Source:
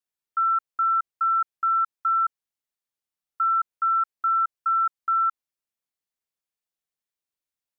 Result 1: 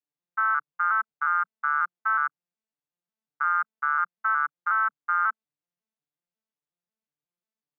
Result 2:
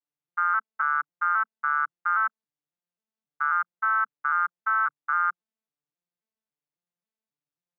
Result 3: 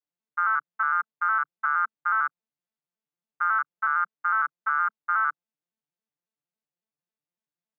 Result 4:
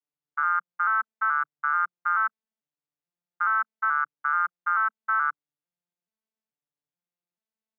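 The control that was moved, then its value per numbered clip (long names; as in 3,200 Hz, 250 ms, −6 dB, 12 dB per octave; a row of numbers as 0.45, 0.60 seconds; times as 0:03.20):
vocoder with an arpeggio as carrier, a note every: 181, 270, 92, 433 milliseconds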